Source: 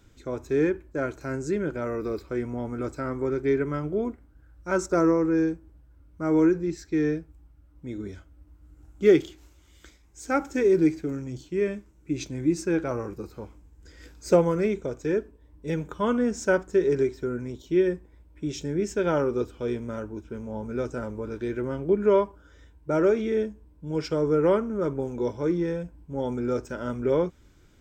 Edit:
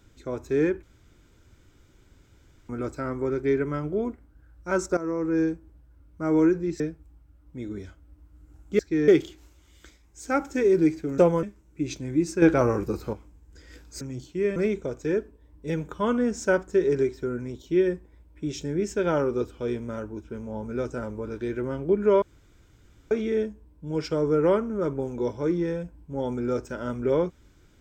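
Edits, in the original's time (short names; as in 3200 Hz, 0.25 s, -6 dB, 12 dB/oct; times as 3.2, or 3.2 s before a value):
0.83–2.69 room tone
4.97–5.41 fade in linear, from -16.5 dB
6.8–7.09 move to 9.08
11.18–11.73 swap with 14.31–14.56
12.72–13.43 gain +8 dB
22.22–23.11 room tone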